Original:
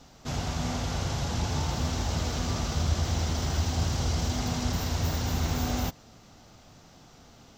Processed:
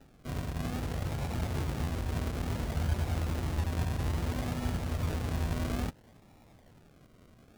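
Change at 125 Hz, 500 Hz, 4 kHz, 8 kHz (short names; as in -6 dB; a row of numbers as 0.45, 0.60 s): -3.5, -3.5, -11.0, -12.0 dB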